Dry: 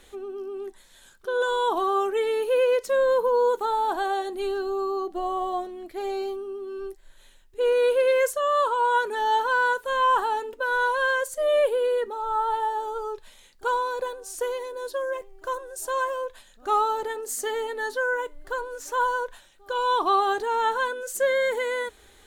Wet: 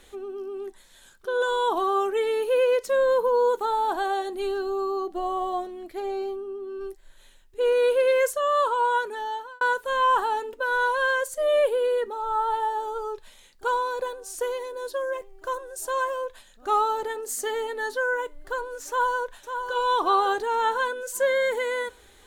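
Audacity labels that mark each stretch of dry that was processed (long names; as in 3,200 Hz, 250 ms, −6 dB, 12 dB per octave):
6.000000	6.810000	high-shelf EQ 2,200 Hz −7.5 dB
8.810000	9.610000	fade out
18.880000	19.730000	delay throw 550 ms, feedback 50%, level −7.5 dB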